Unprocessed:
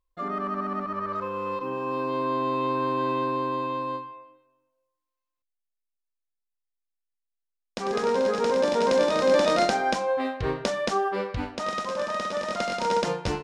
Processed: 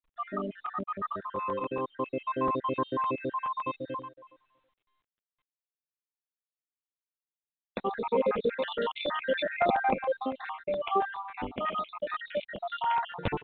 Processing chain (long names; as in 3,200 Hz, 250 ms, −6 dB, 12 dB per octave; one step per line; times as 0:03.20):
time-frequency cells dropped at random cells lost 63%
0:08.49–0:09.48: tilt shelving filter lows −7 dB, about 1,500 Hz
regular buffer underruns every 0.14 s, samples 128, zero, from 0:00.52
mu-law 64 kbit/s 8,000 Hz